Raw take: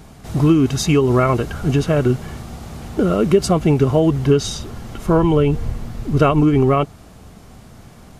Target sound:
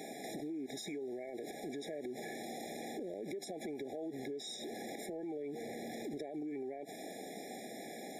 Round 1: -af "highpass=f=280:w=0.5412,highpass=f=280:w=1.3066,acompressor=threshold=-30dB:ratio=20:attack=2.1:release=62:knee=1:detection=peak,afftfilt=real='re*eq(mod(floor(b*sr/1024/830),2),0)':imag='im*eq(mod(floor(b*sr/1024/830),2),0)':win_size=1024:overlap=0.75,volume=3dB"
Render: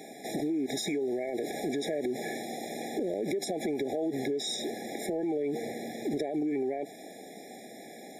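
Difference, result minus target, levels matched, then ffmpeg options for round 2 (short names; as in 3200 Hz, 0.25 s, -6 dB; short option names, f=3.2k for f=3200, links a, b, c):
compressor: peak gain reduction -11 dB
-af "highpass=f=280:w=0.5412,highpass=f=280:w=1.3066,acompressor=threshold=-41.5dB:ratio=20:attack=2.1:release=62:knee=1:detection=peak,afftfilt=real='re*eq(mod(floor(b*sr/1024/830),2),0)':imag='im*eq(mod(floor(b*sr/1024/830),2),0)':win_size=1024:overlap=0.75,volume=3dB"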